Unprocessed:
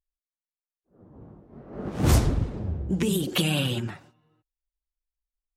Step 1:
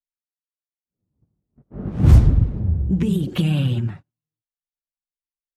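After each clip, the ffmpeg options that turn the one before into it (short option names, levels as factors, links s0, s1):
-af "agate=range=0.0251:threshold=0.00891:ratio=16:detection=peak,bass=f=250:g=14,treble=f=4000:g=-8,volume=0.668"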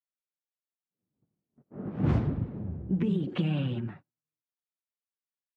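-af "highpass=180,lowpass=2500,volume=0.562"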